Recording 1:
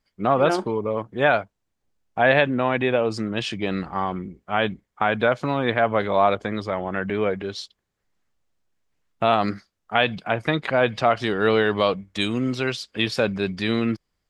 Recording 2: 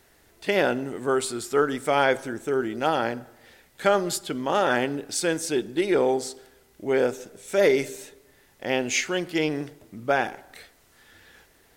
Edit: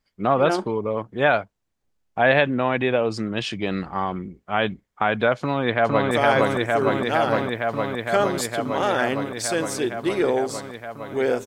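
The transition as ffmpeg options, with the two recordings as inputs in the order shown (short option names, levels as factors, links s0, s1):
-filter_complex "[0:a]apad=whole_dur=11.46,atrim=end=11.46,atrim=end=6.112[s0];[1:a]atrim=start=1.828:end=7.18[s1];[s0][s1]acrossfade=d=0.004:c1=hsin:c2=hsin,asplit=2[s2][s3];[s3]afade=t=in:st=5.38:d=0.01,afade=t=out:st=6.11:d=0.01,aecho=0:1:460|920|1380|1840|2300|2760|3220|3680|4140|4600|5060|5520:0.944061|0.802452|0.682084|0.579771|0.492806|0.418885|0.356052|0.302644|0.257248|0.21866|0.185861|0.157982[s4];[s2][s4]amix=inputs=2:normalize=0"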